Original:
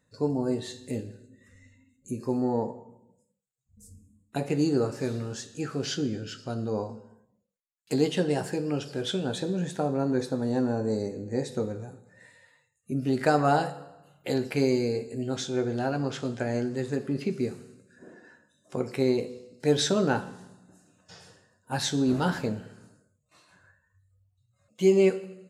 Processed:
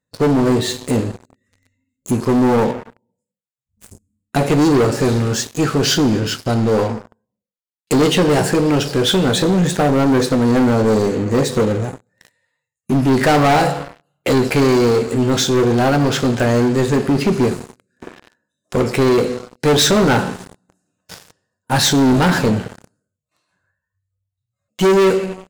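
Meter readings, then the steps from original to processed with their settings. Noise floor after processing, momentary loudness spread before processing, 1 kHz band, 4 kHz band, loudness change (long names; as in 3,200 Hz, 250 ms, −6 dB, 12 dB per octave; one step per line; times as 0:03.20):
−83 dBFS, 12 LU, +13.5 dB, +15.0 dB, +12.5 dB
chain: leveller curve on the samples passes 5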